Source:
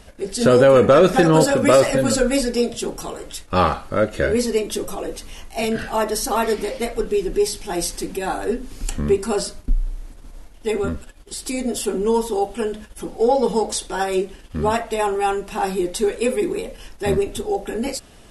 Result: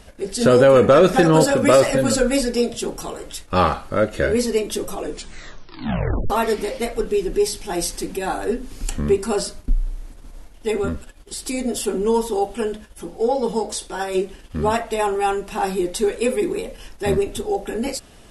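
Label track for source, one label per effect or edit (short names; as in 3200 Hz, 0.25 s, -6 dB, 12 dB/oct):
5.000000	5.000000	tape stop 1.30 s
12.770000	14.150000	resonator 57 Hz, decay 0.18 s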